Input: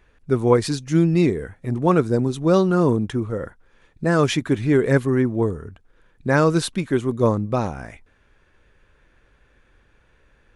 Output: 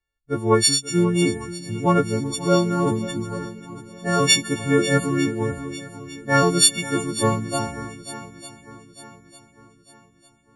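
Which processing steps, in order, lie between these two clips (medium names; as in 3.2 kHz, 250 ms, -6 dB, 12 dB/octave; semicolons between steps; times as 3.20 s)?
partials quantised in pitch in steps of 4 st; shuffle delay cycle 901 ms, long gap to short 1.5:1, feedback 58%, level -10.5 dB; three bands expanded up and down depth 70%; trim -3.5 dB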